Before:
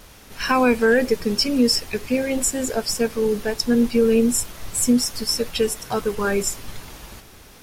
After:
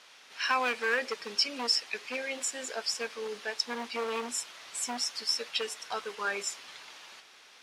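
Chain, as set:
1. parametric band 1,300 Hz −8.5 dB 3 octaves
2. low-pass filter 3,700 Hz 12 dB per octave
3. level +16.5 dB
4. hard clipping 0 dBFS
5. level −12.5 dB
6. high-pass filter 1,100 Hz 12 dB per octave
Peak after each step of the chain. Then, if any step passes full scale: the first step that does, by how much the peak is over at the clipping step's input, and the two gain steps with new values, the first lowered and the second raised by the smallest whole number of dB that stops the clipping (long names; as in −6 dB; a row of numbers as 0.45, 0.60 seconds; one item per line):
−7.5, −10.5, +6.0, 0.0, −12.5, −14.5 dBFS
step 3, 6.0 dB
step 3 +10.5 dB, step 5 −6.5 dB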